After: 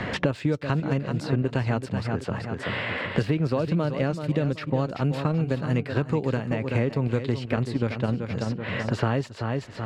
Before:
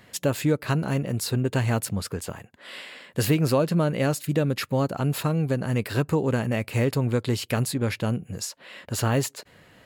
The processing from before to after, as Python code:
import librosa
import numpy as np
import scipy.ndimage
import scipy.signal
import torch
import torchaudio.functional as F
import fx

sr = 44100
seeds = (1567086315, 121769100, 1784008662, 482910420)

p1 = fx.dynamic_eq(x, sr, hz=6800.0, q=7.5, threshold_db=-53.0, ratio=4.0, max_db=-6)
p2 = fx.level_steps(p1, sr, step_db=24)
p3 = p1 + F.gain(torch.from_numpy(p2), -0.5).numpy()
p4 = fx.air_absorb(p3, sr, metres=130.0)
p5 = p4 + fx.echo_feedback(p4, sr, ms=381, feedback_pct=29, wet_db=-10.5, dry=0)
p6 = fx.band_squash(p5, sr, depth_pct=100)
y = F.gain(torch.from_numpy(p6), -6.0).numpy()